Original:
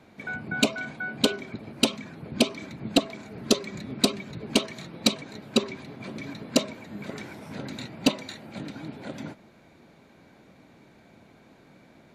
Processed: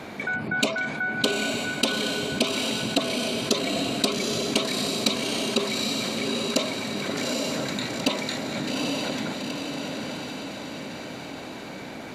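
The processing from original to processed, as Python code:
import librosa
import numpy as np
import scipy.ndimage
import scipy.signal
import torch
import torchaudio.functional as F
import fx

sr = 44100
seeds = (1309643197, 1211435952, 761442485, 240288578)

y = fx.low_shelf(x, sr, hz=210.0, db=-8.5)
y = fx.echo_diffused(y, sr, ms=826, feedback_pct=41, wet_db=-6)
y = fx.env_flatten(y, sr, amount_pct=50)
y = y * 10.0 ** (-1.5 / 20.0)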